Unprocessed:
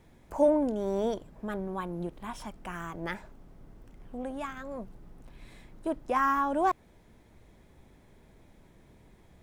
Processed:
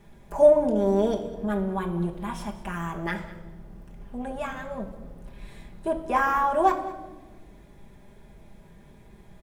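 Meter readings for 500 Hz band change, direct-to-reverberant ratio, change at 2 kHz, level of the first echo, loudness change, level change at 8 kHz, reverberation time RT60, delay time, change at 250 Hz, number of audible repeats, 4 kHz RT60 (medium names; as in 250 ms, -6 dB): +7.5 dB, -0.5 dB, +5.5 dB, -17.5 dB, +6.0 dB, +4.0 dB, 1.2 s, 201 ms, +4.5 dB, 1, 0.95 s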